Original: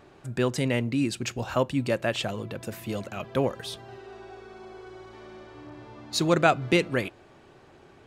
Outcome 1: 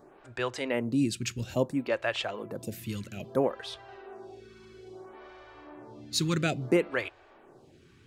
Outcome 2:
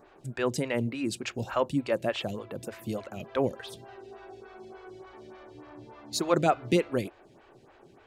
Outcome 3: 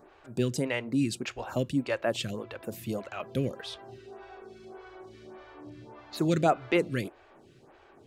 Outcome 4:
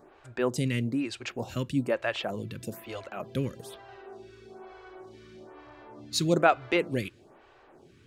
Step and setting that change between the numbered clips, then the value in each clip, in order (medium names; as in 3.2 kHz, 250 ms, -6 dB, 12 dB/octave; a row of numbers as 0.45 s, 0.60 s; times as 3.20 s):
lamp-driven phase shifter, rate: 0.6 Hz, 3.4 Hz, 1.7 Hz, 1.1 Hz